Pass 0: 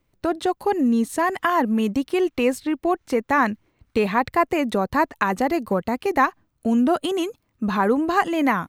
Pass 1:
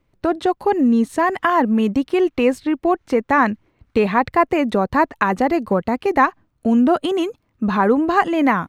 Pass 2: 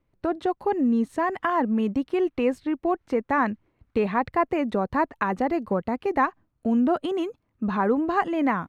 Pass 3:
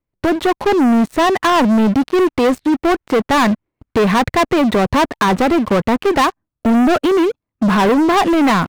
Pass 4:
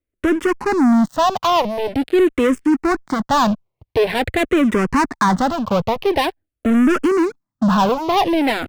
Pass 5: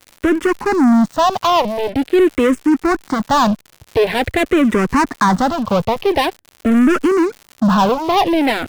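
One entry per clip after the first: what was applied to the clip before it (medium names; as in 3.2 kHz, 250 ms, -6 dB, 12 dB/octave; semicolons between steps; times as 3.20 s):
low-pass 3.1 kHz 6 dB/octave; trim +4 dB
treble shelf 3.1 kHz -7.5 dB; trim -6.5 dB
waveshaping leveller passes 5
barber-pole phaser -0.46 Hz
crackle 130 per s -29 dBFS; trim +2 dB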